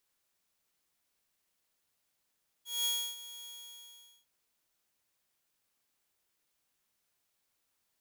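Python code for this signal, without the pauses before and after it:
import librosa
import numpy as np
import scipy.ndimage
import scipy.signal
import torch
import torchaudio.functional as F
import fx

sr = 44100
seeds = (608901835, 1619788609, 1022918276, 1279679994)

y = fx.adsr_tone(sr, wave='saw', hz=3320.0, attack_ms=201.0, decay_ms=302.0, sustain_db=-16.5, held_s=0.81, release_ms=795.0, level_db=-26.0)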